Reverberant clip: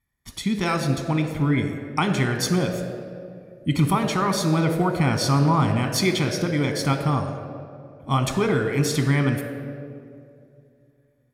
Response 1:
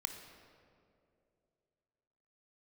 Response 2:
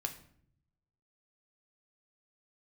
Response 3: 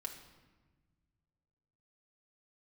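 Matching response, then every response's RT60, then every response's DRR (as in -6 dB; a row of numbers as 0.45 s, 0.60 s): 1; 2.6 s, 0.60 s, 1.3 s; 6.0 dB, 4.5 dB, -0.5 dB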